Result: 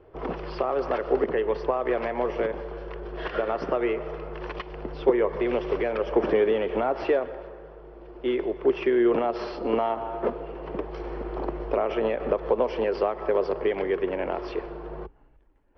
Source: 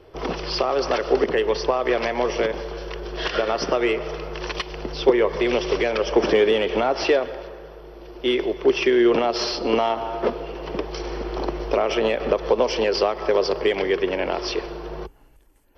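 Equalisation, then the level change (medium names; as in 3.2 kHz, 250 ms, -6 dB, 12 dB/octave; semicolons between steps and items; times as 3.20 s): low-pass 1.8 kHz 12 dB/octave; -4.0 dB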